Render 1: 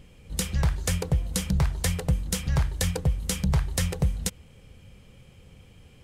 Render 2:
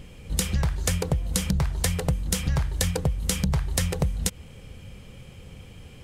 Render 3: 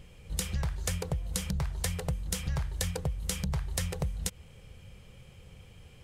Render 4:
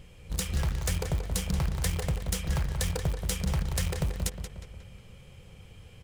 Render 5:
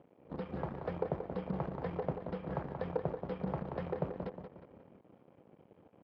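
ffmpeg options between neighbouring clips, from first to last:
-af "acompressor=threshold=0.0398:ratio=6,volume=2.24"
-af "equalizer=f=260:t=o:w=0.67:g=-7,volume=0.447"
-filter_complex "[0:a]asplit=2[s0][s1];[s1]acrusher=bits=4:mix=0:aa=0.000001,volume=0.422[s2];[s0][s2]amix=inputs=2:normalize=0,asoftclip=type=tanh:threshold=0.075,asplit=2[s3][s4];[s4]adelay=180,lowpass=f=4000:p=1,volume=0.447,asplit=2[s5][s6];[s6]adelay=180,lowpass=f=4000:p=1,volume=0.53,asplit=2[s7][s8];[s8]adelay=180,lowpass=f=4000:p=1,volume=0.53,asplit=2[s9][s10];[s10]adelay=180,lowpass=f=4000:p=1,volume=0.53,asplit=2[s11][s12];[s12]adelay=180,lowpass=f=4000:p=1,volume=0.53,asplit=2[s13][s14];[s14]adelay=180,lowpass=f=4000:p=1,volume=0.53[s15];[s3][s5][s7][s9][s11][s13][s15]amix=inputs=7:normalize=0,volume=1.12"
-af "aresample=11025,aeval=exprs='sgn(val(0))*max(abs(val(0))-0.00282,0)':c=same,aresample=44100,acrusher=bits=4:mode=log:mix=0:aa=0.000001,asuperpass=centerf=460:order=4:qfactor=0.61,volume=1.33"

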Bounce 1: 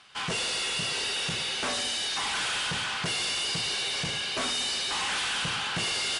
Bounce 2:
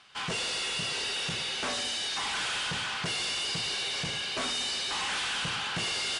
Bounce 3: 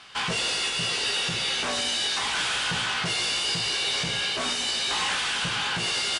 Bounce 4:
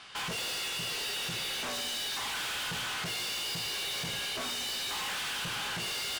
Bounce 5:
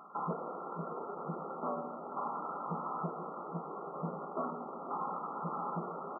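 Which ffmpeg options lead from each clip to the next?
-af "lowpass=9800,volume=0.794"
-filter_complex "[0:a]alimiter=level_in=2.24:limit=0.0631:level=0:latency=1:release=420,volume=0.447,asplit=2[s0][s1];[s1]adelay=17,volume=0.531[s2];[s0][s2]amix=inputs=2:normalize=0,volume=2.66"
-af "volume=39.8,asoftclip=hard,volume=0.0251,volume=0.794"
-af "afftfilt=real='re*between(b*sr/4096,140,1400)':imag='im*between(b*sr/4096,140,1400)':win_size=4096:overlap=0.75,aecho=1:1:480:0.224,volume=1.58"

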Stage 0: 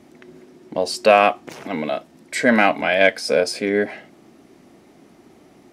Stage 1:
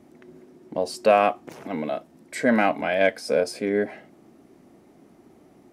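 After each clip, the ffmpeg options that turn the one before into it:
-af "equalizer=f=3700:w=0.43:g=-7,volume=0.708"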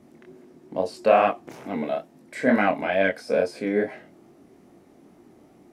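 -filter_complex "[0:a]acrossover=split=3200[s0][s1];[s1]acompressor=threshold=0.00631:ratio=4:attack=1:release=60[s2];[s0][s2]amix=inputs=2:normalize=0,flanger=delay=20:depth=6.5:speed=2.3,volume=1.41"

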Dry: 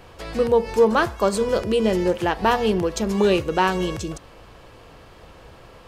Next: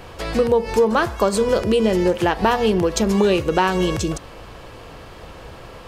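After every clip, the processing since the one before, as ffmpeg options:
-af "acompressor=threshold=0.0794:ratio=3,volume=2.24"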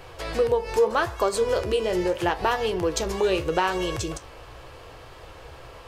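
-af "equalizer=f=210:t=o:w=0.59:g=-14,flanger=delay=7.6:depth=9.2:regen=65:speed=0.78:shape=sinusoidal"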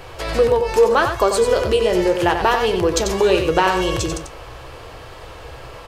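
-af "aecho=1:1:92:0.447,volume=2.11"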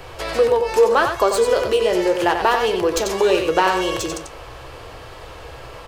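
-filter_complex "[0:a]acrossover=split=270|1800[s0][s1][s2];[s0]acompressor=threshold=0.0158:ratio=6[s3];[s2]aeval=exprs='clip(val(0),-1,0.0501)':c=same[s4];[s3][s1][s4]amix=inputs=3:normalize=0"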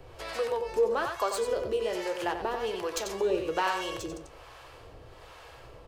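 -filter_complex "[0:a]acrossover=split=600[s0][s1];[s0]aeval=exprs='val(0)*(1-0.7/2+0.7/2*cos(2*PI*1.2*n/s))':c=same[s2];[s1]aeval=exprs='val(0)*(1-0.7/2-0.7/2*cos(2*PI*1.2*n/s))':c=same[s3];[s2][s3]amix=inputs=2:normalize=0,volume=0.355"

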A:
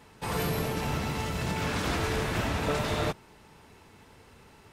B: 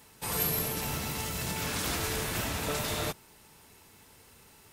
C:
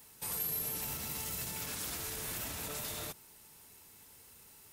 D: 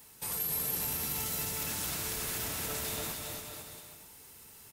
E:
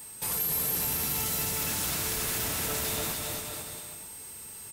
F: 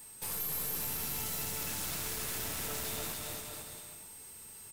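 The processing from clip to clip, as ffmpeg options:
-af "aemphasis=mode=production:type=75fm,volume=0.596"
-af "alimiter=level_in=1.58:limit=0.0631:level=0:latency=1:release=69,volume=0.631,crystalizer=i=1.5:c=0,volume=0.473"
-af "aecho=1:1:280|504|683.2|826.6|941.2:0.631|0.398|0.251|0.158|0.1,volume=1.26"
-af "aeval=exprs='val(0)+0.00316*sin(2*PI*8300*n/s)':c=same,asoftclip=type=tanh:threshold=0.0335,volume=2.11"
-af "aeval=exprs='(tanh(22.4*val(0)+0.6)-tanh(0.6))/22.4':c=same,volume=0.668"

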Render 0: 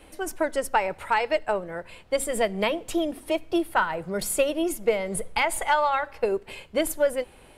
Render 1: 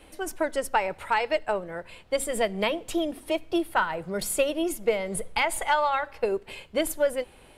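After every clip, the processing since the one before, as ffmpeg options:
-af "equalizer=f=3500:w=1.5:g=2,volume=0.841"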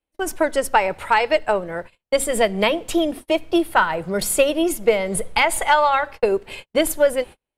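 -af "agate=range=0.00794:threshold=0.01:ratio=16:detection=peak,volume=2.37"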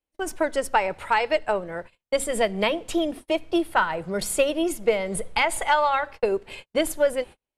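-af "lowpass=11000,volume=0.596"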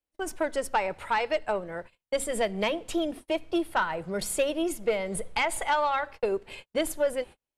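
-af "asoftclip=type=tanh:threshold=0.237,volume=0.668"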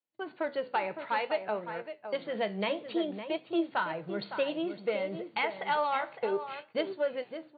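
-filter_complex "[0:a]asplit=2[s0][s1];[s1]adelay=559.8,volume=0.355,highshelf=f=4000:g=-12.6[s2];[s0][s2]amix=inputs=2:normalize=0,flanger=delay=7.6:depth=8:regen=73:speed=0.58:shape=triangular,afftfilt=real='re*between(b*sr/4096,110,4600)':imag='im*between(b*sr/4096,110,4600)':win_size=4096:overlap=0.75"

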